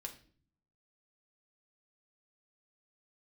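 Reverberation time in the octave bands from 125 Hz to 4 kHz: 0.95, 0.85, 0.55, 0.40, 0.40, 0.40 seconds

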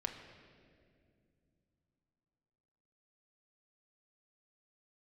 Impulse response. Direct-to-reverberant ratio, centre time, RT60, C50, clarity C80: 2.5 dB, 38 ms, 2.3 s, 7.0 dB, 8.0 dB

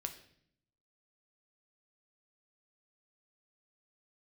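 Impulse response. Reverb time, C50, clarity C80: 0.65 s, 11.5 dB, 14.0 dB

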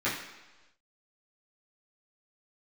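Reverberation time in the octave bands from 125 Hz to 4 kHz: 1.0, 1.0, 1.1, 1.1, 1.1, 1.2 seconds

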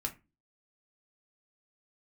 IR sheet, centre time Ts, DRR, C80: 9 ms, 1.5 dB, 23.0 dB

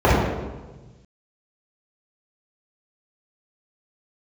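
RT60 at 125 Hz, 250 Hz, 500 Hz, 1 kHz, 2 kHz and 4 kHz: 2.0, 1.5, 1.3, 1.2, 1.0, 0.90 seconds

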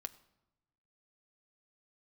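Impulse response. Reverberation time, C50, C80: 0.95 s, 18.0 dB, 19.5 dB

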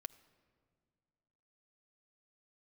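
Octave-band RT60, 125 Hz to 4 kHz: 2.5, 2.4, 2.2, 1.9, 1.5, 1.1 seconds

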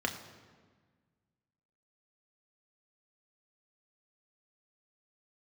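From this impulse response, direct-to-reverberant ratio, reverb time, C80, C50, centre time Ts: 3.0 dB, 1.5 s, 11.0 dB, 10.0 dB, 21 ms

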